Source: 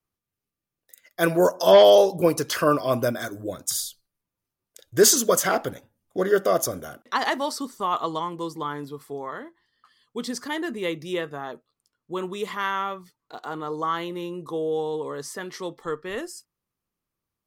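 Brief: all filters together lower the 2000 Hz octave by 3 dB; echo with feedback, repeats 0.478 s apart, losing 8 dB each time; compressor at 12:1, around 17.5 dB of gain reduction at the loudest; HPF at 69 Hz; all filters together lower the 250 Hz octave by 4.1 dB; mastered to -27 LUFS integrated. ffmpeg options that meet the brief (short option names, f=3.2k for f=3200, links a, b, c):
-af "highpass=69,equalizer=f=250:t=o:g=-6.5,equalizer=f=2k:t=o:g=-4,acompressor=threshold=-29dB:ratio=12,aecho=1:1:478|956|1434|1912|2390:0.398|0.159|0.0637|0.0255|0.0102,volume=7.5dB"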